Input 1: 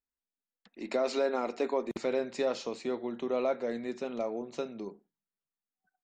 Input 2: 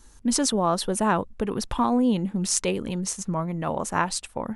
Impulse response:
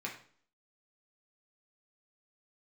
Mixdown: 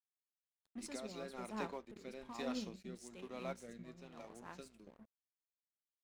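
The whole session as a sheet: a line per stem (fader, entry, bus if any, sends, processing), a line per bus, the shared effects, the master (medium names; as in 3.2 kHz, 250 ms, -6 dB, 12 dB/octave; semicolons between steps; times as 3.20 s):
-3.5 dB, 0.00 s, no send, peaking EQ 480 Hz -10 dB 2 oct; hum 60 Hz, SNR 20 dB
-16.5 dB, 0.50 s, send -11 dB, auto duck -7 dB, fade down 1.35 s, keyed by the first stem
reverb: on, RT60 0.50 s, pre-delay 3 ms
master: crossover distortion -54 dBFS; rotary cabinet horn 1.1 Hz; upward expansion 1.5:1, over -47 dBFS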